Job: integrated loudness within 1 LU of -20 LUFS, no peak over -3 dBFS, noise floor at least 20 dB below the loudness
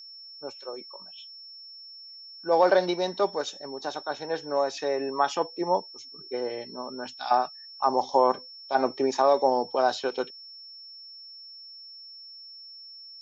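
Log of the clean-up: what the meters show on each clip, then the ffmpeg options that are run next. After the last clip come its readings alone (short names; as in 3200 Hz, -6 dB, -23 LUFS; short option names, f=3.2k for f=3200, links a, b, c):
steady tone 5400 Hz; tone level -43 dBFS; loudness -27.0 LUFS; peak -8.5 dBFS; loudness target -20.0 LUFS
-> -af "bandreject=f=5.4k:w=30"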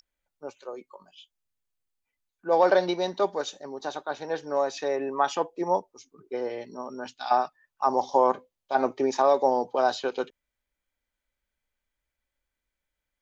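steady tone none; loudness -27.0 LUFS; peak -8.5 dBFS; loudness target -20.0 LUFS
-> -af "volume=7dB,alimiter=limit=-3dB:level=0:latency=1"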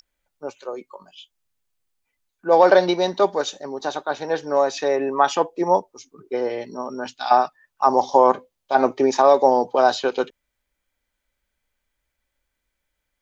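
loudness -20.0 LUFS; peak -3.0 dBFS; noise floor -79 dBFS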